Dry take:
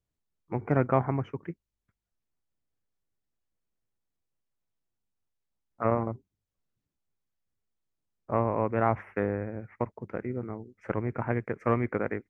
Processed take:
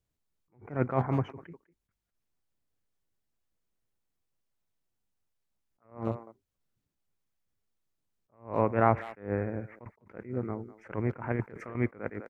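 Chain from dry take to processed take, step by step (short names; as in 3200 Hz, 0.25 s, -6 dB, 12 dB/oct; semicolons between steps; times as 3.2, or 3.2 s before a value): 11.32–11.75 negative-ratio compressor -32 dBFS, ratio -0.5; speakerphone echo 0.2 s, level -17 dB; attack slew limiter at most 170 dB/s; gain +2 dB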